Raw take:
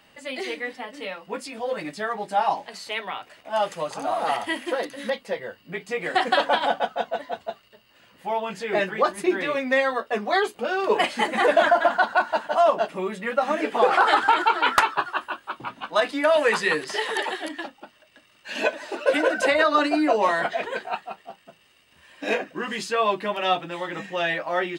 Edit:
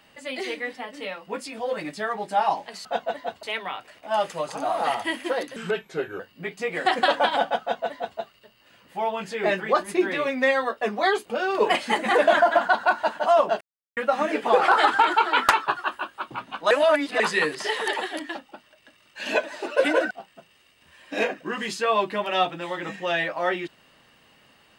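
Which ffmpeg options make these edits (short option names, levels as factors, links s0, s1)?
-filter_complex "[0:a]asplit=10[s0][s1][s2][s3][s4][s5][s6][s7][s8][s9];[s0]atrim=end=2.852[s10];[s1]atrim=start=6.898:end=7.482[s11];[s2]atrim=start=2.848:end=4.984[s12];[s3]atrim=start=4.98:end=5.49,asetpts=PTS-STARTPTS,asetrate=35280,aresample=44100[s13];[s4]atrim=start=5.486:end=12.9,asetpts=PTS-STARTPTS,afade=t=out:st=7.41:d=0.004:c=hsin[s14];[s5]atrim=start=12.9:end=13.26,asetpts=PTS-STARTPTS,volume=0[s15];[s6]atrim=start=13.26:end=16.002,asetpts=PTS-STARTPTS,afade=t=in:d=0.004:c=hsin[s16];[s7]atrim=start=15.998:end=16.492,asetpts=PTS-STARTPTS,areverse[s17];[s8]atrim=start=16.488:end=19.402[s18];[s9]atrim=start=21.208[s19];[s10][s11]acrossfade=d=0.004:c1=hsin:c2=hsin[s20];[s20][s12]acrossfade=d=0.004:c1=hsin:c2=hsin[s21];[s21][s13]acrossfade=d=0.004:c1=hsin:c2=hsin[s22];[s14][s15][s16]concat=n=3:v=0:a=1[s23];[s22][s23]acrossfade=d=0.004:c1=hsin:c2=hsin[s24];[s24][s17]acrossfade=d=0.004:c1=hsin:c2=hsin[s25];[s25][s18]acrossfade=d=0.004:c1=hsin:c2=hsin[s26];[s26][s19]acrossfade=d=0.004:c1=hsin:c2=hsin"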